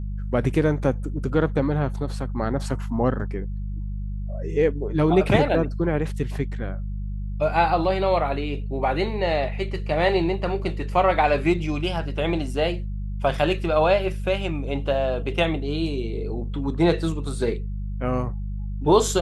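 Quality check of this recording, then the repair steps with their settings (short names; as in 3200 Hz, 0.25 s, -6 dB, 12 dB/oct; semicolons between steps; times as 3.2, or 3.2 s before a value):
hum 50 Hz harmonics 4 -29 dBFS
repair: de-hum 50 Hz, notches 4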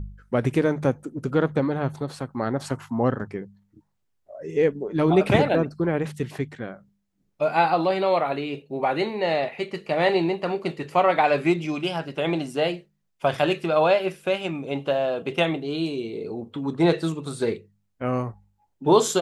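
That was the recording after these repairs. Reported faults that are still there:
none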